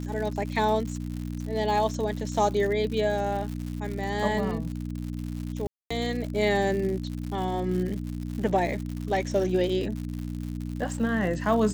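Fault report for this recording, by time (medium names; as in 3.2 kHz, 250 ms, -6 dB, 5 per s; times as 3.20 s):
crackle 140 per s -33 dBFS
hum 60 Hz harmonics 5 -33 dBFS
5.67–5.91 s: dropout 235 ms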